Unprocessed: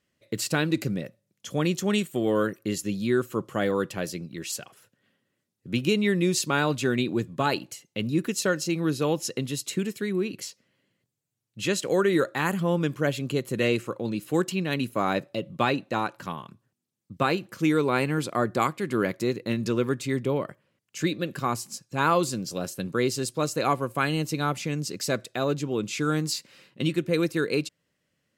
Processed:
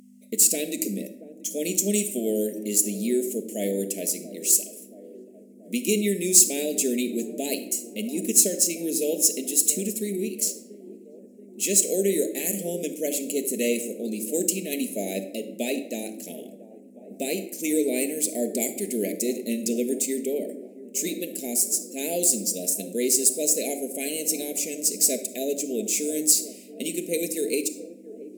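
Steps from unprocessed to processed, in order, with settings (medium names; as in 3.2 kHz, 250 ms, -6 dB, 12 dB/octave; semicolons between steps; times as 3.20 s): median filter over 3 samples; elliptic band-stop 630–2200 Hz, stop band 80 dB; resonant high shelf 5.5 kHz +13.5 dB, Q 1.5; feedback echo behind a band-pass 681 ms, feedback 64%, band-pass 500 Hz, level -15 dB; simulated room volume 2400 m³, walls furnished, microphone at 1.5 m; hum 50 Hz, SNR 12 dB; brick-wall FIR high-pass 190 Hz; peaking EQ 13 kHz +6.5 dB 1.1 oct; trim -1 dB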